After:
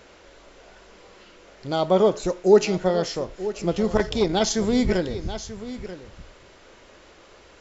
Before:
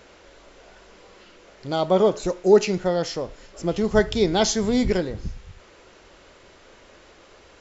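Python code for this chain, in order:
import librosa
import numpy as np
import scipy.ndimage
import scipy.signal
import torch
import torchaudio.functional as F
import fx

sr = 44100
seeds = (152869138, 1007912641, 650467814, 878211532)

y = x + 10.0 ** (-13.5 / 20.0) * np.pad(x, (int(936 * sr / 1000.0), 0))[:len(x)]
y = fx.transformer_sat(y, sr, knee_hz=470.0, at=(3.96, 4.54))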